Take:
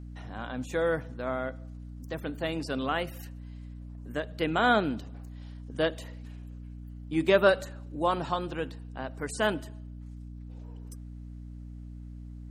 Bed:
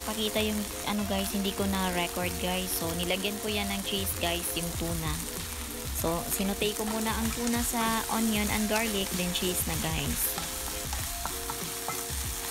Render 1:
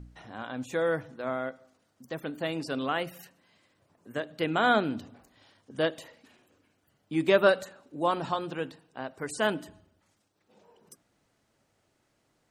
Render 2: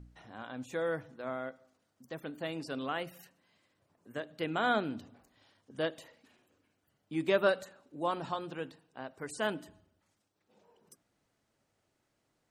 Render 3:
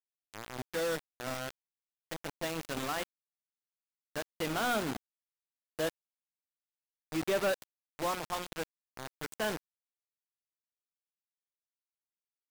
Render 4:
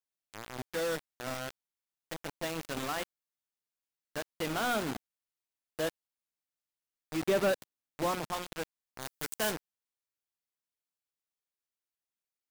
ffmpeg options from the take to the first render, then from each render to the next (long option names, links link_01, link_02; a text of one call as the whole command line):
ffmpeg -i in.wav -af "bandreject=frequency=60:width_type=h:width=4,bandreject=frequency=120:width_type=h:width=4,bandreject=frequency=180:width_type=h:width=4,bandreject=frequency=240:width_type=h:width=4,bandreject=frequency=300:width_type=h:width=4" out.wav
ffmpeg -i in.wav -af "volume=-6dB" out.wav
ffmpeg -i in.wav -af "acrusher=bits=5:mix=0:aa=0.000001,asoftclip=type=hard:threshold=-25.5dB" out.wav
ffmpeg -i in.wav -filter_complex "[0:a]asettb=1/sr,asplit=3[link_01][link_02][link_03];[link_01]atrim=end=7.244[link_04];[link_02]atrim=start=7.24:end=8.32,asetpts=PTS-STARTPTS,afade=type=in:duration=0.004:curve=qsin,afade=type=out:start_time=1.076:duration=0.004:curve=qsin,equalizer=frequency=190:width_type=o:width=2.5:gain=6[link_05];[link_03]atrim=start=8.316[link_06];[link_04][link_05]acrossfade=duration=0.004:curve1=hsin:curve2=qsin[link_07];[link_07][link_06]acrossfade=duration=0.004:curve1=qsin:curve2=hsin,asplit=3[link_08][link_09][link_10];[link_08]afade=type=out:start_time=9:duration=0.02[link_11];[link_09]highshelf=frequency=4500:gain=10.5,afade=type=in:start_time=9:duration=0.02,afade=type=out:start_time=9.5:duration=0.02[link_12];[link_10]afade=type=in:start_time=9.5:duration=0.02[link_13];[link_11][link_12][link_13]amix=inputs=3:normalize=0" out.wav